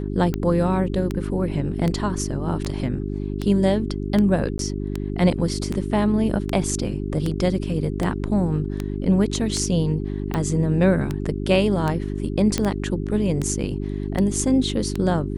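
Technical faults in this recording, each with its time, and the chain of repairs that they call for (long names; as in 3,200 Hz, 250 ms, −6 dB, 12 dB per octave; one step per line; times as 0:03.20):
mains hum 50 Hz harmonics 8 −27 dBFS
scratch tick 78 rpm −12 dBFS
0:04.58–0:04.59: drop-out 12 ms
0:12.58: click −7 dBFS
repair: click removal
hum removal 50 Hz, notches 8
repair the gap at 0:04.58, 12 ms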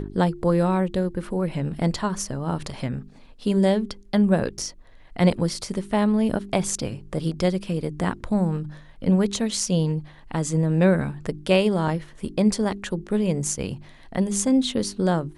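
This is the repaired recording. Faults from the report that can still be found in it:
none of them is left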